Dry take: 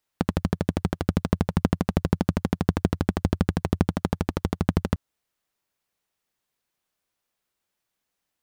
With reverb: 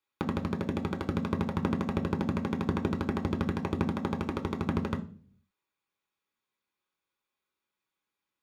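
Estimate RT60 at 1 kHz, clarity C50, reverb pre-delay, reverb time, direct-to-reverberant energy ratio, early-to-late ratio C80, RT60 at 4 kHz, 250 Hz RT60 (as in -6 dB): 0.35 s, 15.0 dB, 3 ms, 0.45 s, 3.0 dB, 19.0 dB, 0.45 s, 0.70 s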